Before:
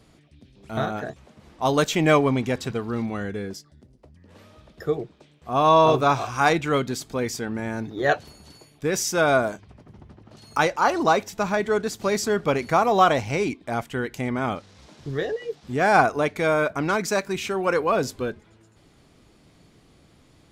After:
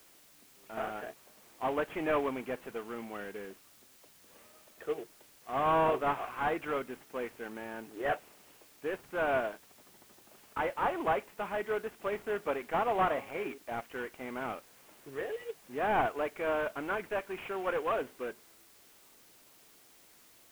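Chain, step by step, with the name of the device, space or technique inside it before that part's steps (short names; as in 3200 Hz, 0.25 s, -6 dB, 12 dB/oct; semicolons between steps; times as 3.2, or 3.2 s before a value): 12.91–13.58 de-hum 136.9 Hz, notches 9; army field radio (BPF 360–3100 Hz; CVSD 16 kbps; white noise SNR 25 dB); gain -8 dB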